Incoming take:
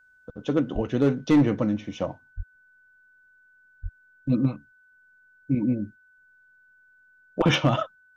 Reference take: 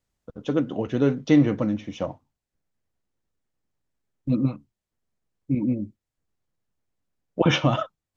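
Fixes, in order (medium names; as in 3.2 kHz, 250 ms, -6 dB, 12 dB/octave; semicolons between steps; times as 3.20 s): clip repair -13 dBFS; band-stop 1.5 kHz, Q 30; 0.74–0.86 s: high-pass 140 Hz 24 dB/octave; 2.36–2.48 s: high-pass 140 Hz 24 dB/octave; 3.82–3.94 s: high-pass 140 Hz 24 dB/octave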